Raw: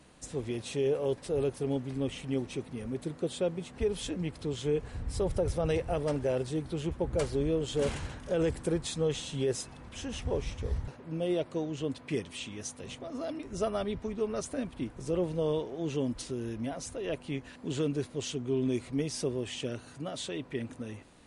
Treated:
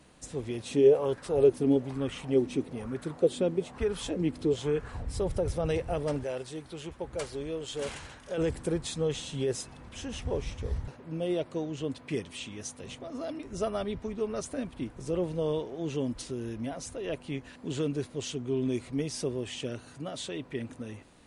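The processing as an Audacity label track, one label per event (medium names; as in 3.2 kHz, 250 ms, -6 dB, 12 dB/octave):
0.710000	5.050000	sweeping bell 1.1 Hz 250–1500 Hz +12 dB
6.240000	8.380000	bass shelf 440 Hz -11 dB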